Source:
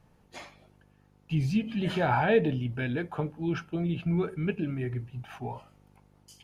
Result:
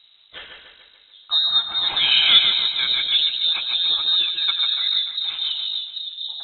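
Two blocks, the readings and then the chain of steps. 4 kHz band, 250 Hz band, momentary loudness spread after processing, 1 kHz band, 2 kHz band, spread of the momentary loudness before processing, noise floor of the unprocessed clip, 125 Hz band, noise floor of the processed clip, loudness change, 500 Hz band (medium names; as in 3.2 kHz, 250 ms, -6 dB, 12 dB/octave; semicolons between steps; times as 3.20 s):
+32.0 dB, under -20 dB, 11 LU, -2.5 dB, +8.5 dB, 17 LU, -63 dBFS, under -20 dB, -53 dBFS, +12.0 dB, under -15 dB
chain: two-band feedback delay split 540 Hz, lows 791 ms, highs 145 ms, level -4.5 dB; frequency inversion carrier 3.9 kHz; trim +7 dB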